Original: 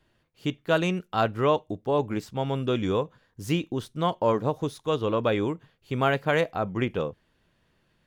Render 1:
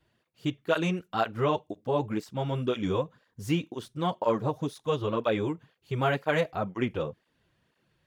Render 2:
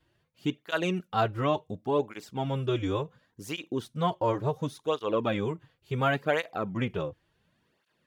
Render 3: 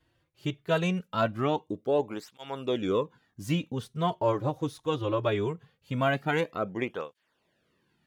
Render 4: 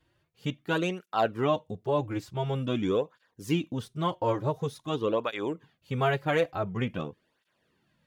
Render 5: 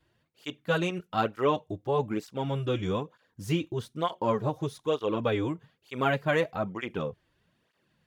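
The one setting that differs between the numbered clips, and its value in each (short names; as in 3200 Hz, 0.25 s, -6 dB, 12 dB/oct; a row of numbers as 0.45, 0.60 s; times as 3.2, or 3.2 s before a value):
tape flanging out of phase, nulls at: 2, 0.7, 0.21, 0.47, 1.1 Hz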